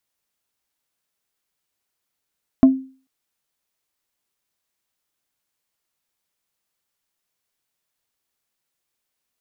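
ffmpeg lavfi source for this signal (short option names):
-f lavfi -i "aevalsrc='0.631*pow(10,-3*t/0.39)*sin(2*PI*264*t)+0.168*pow(10,-3*t/0.13)*sin(2*PI*660*t)+0.0447*pow(10,-3*t/0.074)*sin(2*PI*1056*t)+0.0119*pow(10,-3*t/0.057)*sin(2*PI*1320*t)+0.00316*pow(10,-3*t/0.041)*sin(2*PI*1716*t)':d=0.44:s=44100"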